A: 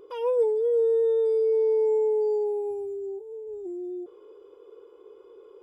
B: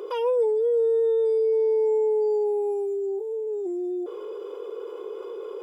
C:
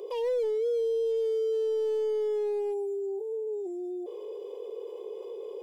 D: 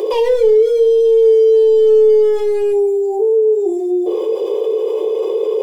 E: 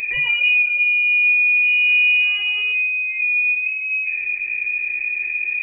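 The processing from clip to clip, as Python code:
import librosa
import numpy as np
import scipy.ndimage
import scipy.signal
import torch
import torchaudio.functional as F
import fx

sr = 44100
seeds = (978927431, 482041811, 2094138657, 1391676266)

y1 = scipy.signal.sosfilt(scipy.signal.butter(4, 360.0, 'highpass', fs=sr, output='sos'), x)
y1 = fx.env_flatten(y1, sr, amount_pct=50)
y2 = np.clip(10.0 ** (22.5 / 20.0) * y1, -1.0, 1.0) / 10.0 ** (22.5 / 20.0)
y2 = fx.fixed_phaser(y2, sr, hz=570.0, stages=4)
y2 = F.gain(torch.from_numpy(y2), -2.5).numpy()
y3 = fx.room_shoebox(y2, sr, seeds[0], volume_m3=32.0, walls='mixed', distance_m=0.48)
y3 = fx.env_flatten(y3, sr, amount_pct=50)
y3 = F.gain(torch.from_numpy(y3), 9.0).numpy()
y4 = fx.freq_invert(y3, sr, carrier_hz=2900)
y4 = F.gain(torch.from_numpy(y4), -6.0).numpy()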